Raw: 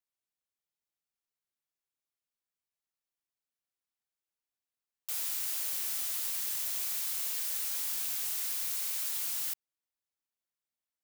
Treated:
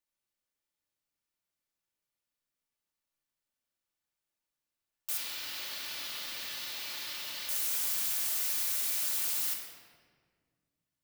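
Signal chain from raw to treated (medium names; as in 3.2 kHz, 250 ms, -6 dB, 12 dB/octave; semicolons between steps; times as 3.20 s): 5.17–7.49 s: resonant high shelf 5.8 kHz -11.5 dB, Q 1.5; simulated room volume 2300 m³, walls mixed, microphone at 2.5 m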